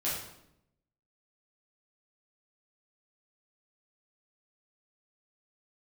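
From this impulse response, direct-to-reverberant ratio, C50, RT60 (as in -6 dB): -8.5 dB, 2.5 dB, 0.80 s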